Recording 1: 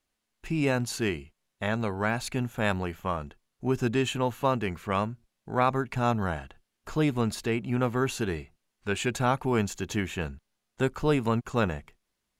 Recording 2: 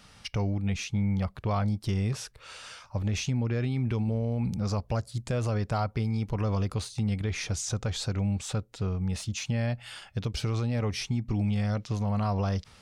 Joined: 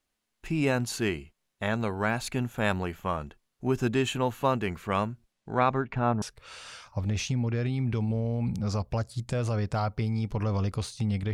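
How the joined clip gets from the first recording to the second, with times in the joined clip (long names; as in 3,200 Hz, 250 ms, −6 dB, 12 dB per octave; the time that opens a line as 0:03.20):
recording 1
0:05.32–0:06.22: low-pass filter 11,000 Hz → 1,300 Hz
0:06.22: continue with recording 2 from 0:02.20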